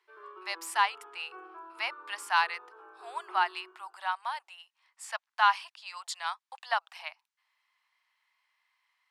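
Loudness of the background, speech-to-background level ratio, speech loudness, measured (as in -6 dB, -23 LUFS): -50.0 LUFS, 18.0 dB, -32.0 LUFS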